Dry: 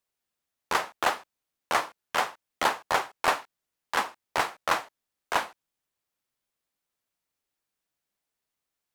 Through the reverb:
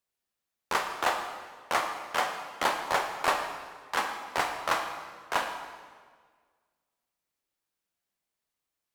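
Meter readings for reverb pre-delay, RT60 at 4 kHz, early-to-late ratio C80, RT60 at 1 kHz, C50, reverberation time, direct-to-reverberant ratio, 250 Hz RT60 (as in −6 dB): 18 ms, 1.4 s, 7.5 dB, 1.6 s, 6.0 dB, 1.6 s, 4.5 dB, 1.7 s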